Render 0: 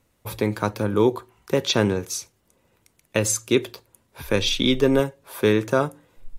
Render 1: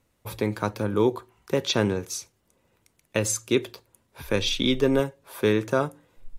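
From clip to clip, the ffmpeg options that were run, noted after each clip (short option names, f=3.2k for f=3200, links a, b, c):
-af "highshelf=f=12k:g=-3,volume=-3dB"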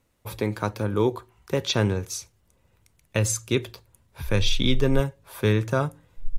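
-af "asubboost=boost=5:cutoff=130"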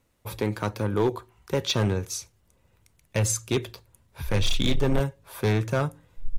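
-af "volume=17dB,asoftclip=hard,volume=-17dB"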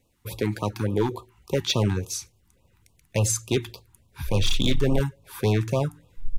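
-af "afftfilt=real='re*(1-between(b*sr/1024,490*pow(1800/490,0.5+0.5*sin(2*PI*3.5*pts/sr))/1.41,490*pow(1800/490,0.5+0.5*sin(2*PI*3.5*pts/sr))*1.41))':imag='im*(1-between(b*sr/1024,490*pow(1800/490,0.5+0.5*sin(2*PI*3.5*pts/sr))/1.41,490*pow(1800/490,0.5+0.5*sin(2*PI*3.5*pts/sr))*1.41))':win_size=1024:overlap=0.75,volume=1.5dB"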